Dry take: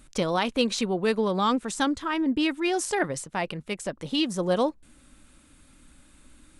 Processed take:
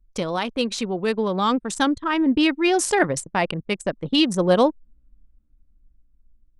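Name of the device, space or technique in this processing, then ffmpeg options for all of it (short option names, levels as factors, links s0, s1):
voice memo with heavy noise removal: -af "anlmdn=3.98,dynaudnorm=f=460:g=7:m=2.37"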